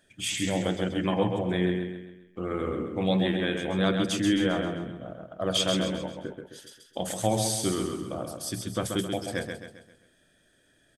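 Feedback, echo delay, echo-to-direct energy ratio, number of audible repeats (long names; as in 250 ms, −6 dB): 44%, 133 ms, −4.5 dB, 5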